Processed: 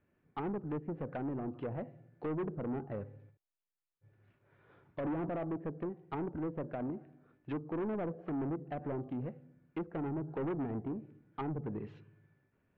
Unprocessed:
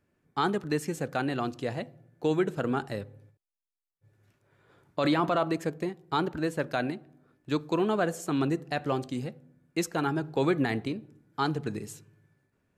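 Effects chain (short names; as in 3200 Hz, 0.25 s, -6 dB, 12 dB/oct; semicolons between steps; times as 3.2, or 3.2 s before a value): treble ducked by the level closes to 510 Hz, closed at -26.5 dBFS; soft clip -30.5 dBFS, distortion -9 dB; LPF 3000 Hz 24 dB/oct; gain -2 dB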